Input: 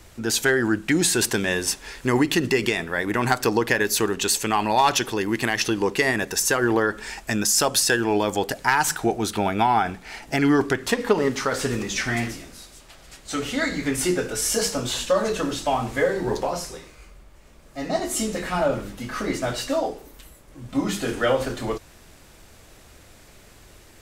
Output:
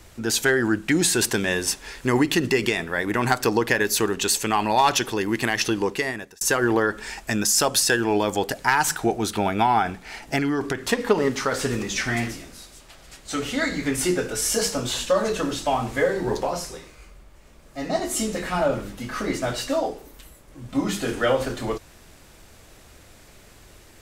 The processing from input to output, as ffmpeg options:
-filter_complex "[0:a]asettb=1/sr,asplit=3[s0][s1][s2];[s0]atrim=end=10.384[s3];[s1]atrim=start=10.38:end=10.83,asetpts=PTS-STARTPTS,afade=t=in:d=0.004:c=qsin,afade=t=out:st=0.446:d=0.004:c=qsin,acompressor=threshold=0.1:ratio=6:attack=3.2:release=140:knee=1:detection=peak[s4];[s2]atrim=start=10.826[s5];[s3][s4]acrossfade=d=0.004:c1=hsin:c2=qsin[s6];[s6][s5]acrossfade=d=0.004:c1=qsin:c2=hsin,asplit=2[s7][s8];[s7]atrim=end=6.41,asetpts=PTS-STARTPTS,afade=t=out:st=5.76:d=0.65[s9];[s8]atrim=start=6.41,asetpts=PTS-STARTPTS,afade=t=in:d=0.004:c=hsin[s10];[s9][s10]concat=n=2:v=0:a=1"

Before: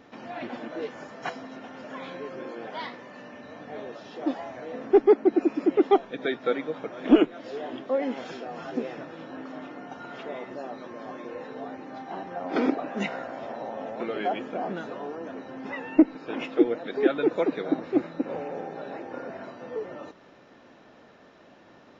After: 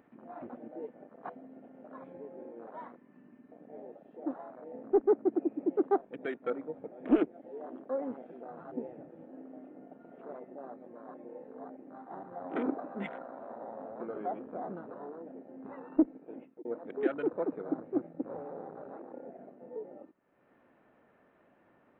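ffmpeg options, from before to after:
-filter_complex "[0:a]asplit=2[s0][s1];[s0]atrim=end=16.65,asetpts=PTS-STARTPTS,afade=t=out:st=16.16:d=0.49[s2];[s1]atrim=start=16.65,asetpts=PTS-STARTPTS,afade=t=in:d=0.004:c=hsin[s3];[s2][s3]concat=n=2:v=0:a=1,lowpass=f=2400:w=0.5412,lowpass=f=2400:w=1.3066,afwtdn=0.02,acompressor=mode=upward:threshold=0.00562:ratio=2.5,volume=0.398"

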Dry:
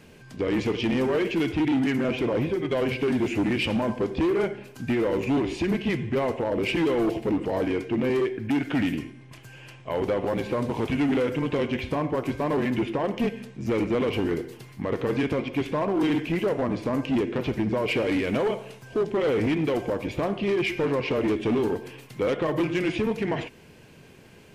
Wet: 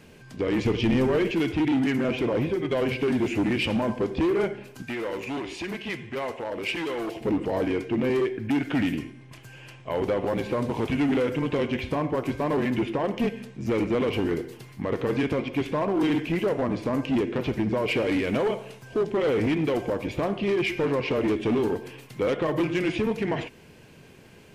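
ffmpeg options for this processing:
-filter_complex "[0:a]asettb=1/sr,asplit=3[s0][s1][s2];[s0]atrim=end=0.654[s3];[s1]atrim=start=0.65:end=1.31,asetpts=PTS-STARTPTS,afade=t=in:d=0.004:c=qsin,afade=t=out:st=0.656:d=0.004:c=qsin,lowshelf=f=120:g=12[s4];[s2]atrim=start=1.306[s5];[s3][s4]acrossfade=d=0.004:c1=hsin:c2=qsin[s6];[s6][s5]acrossfade=d=0.004:c1=qsin:c2=hsin,asettb=1/sr,asplit=3[s7][s8][s9];[s7]atrim=end=4.824[s10];[s8]atrim=start=4.82:end=7.21,asetpts=PTS-STARTPTS,afade=t=in:d=0.004:c=qsin,afade=t=out:st=2.386:d=0.004:c=qsin,lowshelf=f=500:g=-12[s11];[s9]atrim=start=7.206[s12];[s10][s11]acrossfade=d=0.004:c1=hsin:c2=qsin[s13];[s13][s12]acrossfade=d=0.004:c1=qsin:c2=hsin"

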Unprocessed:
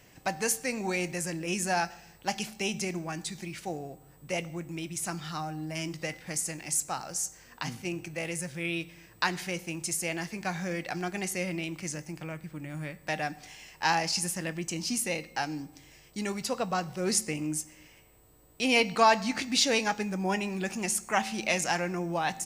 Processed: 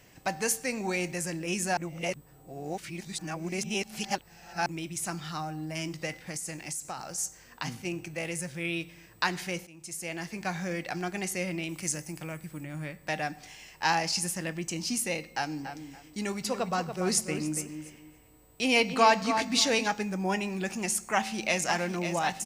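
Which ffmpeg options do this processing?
-filter_complex "[0:a]asettb=1/sr,asplit=3[s0][s1][s2];[s0]atrim=end=6.154[s3];[s1]atrim=start=6.15:end=7.18,asetpts=PTS-STARTPTS,afade=t=in:d=0.004:c=qsin,afade=t=out:st=1.026:d=0.004:c=qsin,acompressor=threshold=0.0251:ratio=6:attack=3.2:release=140:knee=1:detection=peak[s4];[s2]atrim=start=7.176[s5];[s3][s4]acrossfade=d=0.004:c1=hsin:c2=qsin[s6];[s6][s5]acrossfade=d=0.004:c1=qsin:c2=hsin,asettb=1/sr,asplit=3[s7][s8][s9];[s7]atrim=end=11.694[s10];[s8]atrim=start=11.69:end=12.64,asetpts=PTS-STARTPTS,afade=t=in:d=0.004:c=qsin,afade=t=out:st=0.946:d=0.004:c=qsin,equalizer=f=11000:w=0.69:g=11.5[s11];[s9]atrim=start=12.636[s12];[s10][s11]acrossfade=d=0.004:c1=hsin:c2=qsin[s13];[s13][s12]acrossfade=d=0.004:c1=qsin:c2=hsin,asplit=3[s14][s15][s16];[s14]afade=t=out:st=15.61:d=0.02[s17];[s15]asplit=2[s18][s19];[s19]adelay=284,lowpass=f=2500:p=1,volume=0.398,asplit=2[s20][s21];[s21]adelay=284,lowpass=f=2500:p=1,volume=0.24,asplit=2[s22][s23];[s23]adelay=284,lowpass=f=2500:p=1,volume=0.24[s24];[s18][s20][s22][s24]amix=inputs=4:normalize=0,afade=t=in:st=15.61:d=0.02,afade=t=out:st=19.86:d=0.02[s25];[s16]afade=t=in:st=19.86:d=0.02[s26];[s17][s25][s26]amix=inputs=3:normalize=0,asplit=2[s27][s28];[s28]afade=t=in:st=21.13:d=0.01,afade=t=out:st=21.72:d=0.01,aecho=0:1:550|1100|1650|2200|2750|3300|3850|4400|4950:0.375837|0.244294|0.158791|0.103214|0.0670893|0.0436081|0.0283452|0.0184244|0.0119759[s29];[s27][s29]amix=inputs=2:normalize=0,asplit=4[s30][s31][s32][s33];[s30]atrim=end=1.772[s34];[s31]atrim=start=1.768:end=4.662,asetpts=PTS-STARTPTS,areverse[s35];[s32]atrim=start=4.658:end=9.67,asetpts=PTS-STARTPTS,afade=t=out:st=5.008:d=0.004:c=hsin:silence=0.1[s36];[s33]atrim=start=9.67,asetpts=PTS-STARTPTS,afade=t=in:d=0.71:silence=0.1[s37];[s34][s35]acrossfade=d=0.004:c1=hsin:c2=hsin[s38];[s36][s37]concat=n=2:v=0:a=1[s39];[s38][s39]acrossfade=d=0.004:c1=hsin:c2=hsin"

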